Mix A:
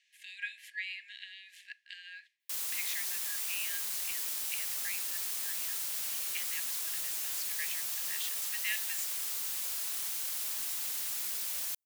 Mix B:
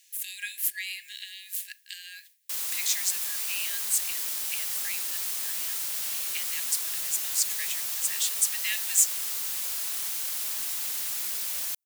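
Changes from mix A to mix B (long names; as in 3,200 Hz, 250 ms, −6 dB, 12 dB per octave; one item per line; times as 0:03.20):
speech: remove low-pass filter 2,300 Hz 12 dB per octave
background +4.5 dB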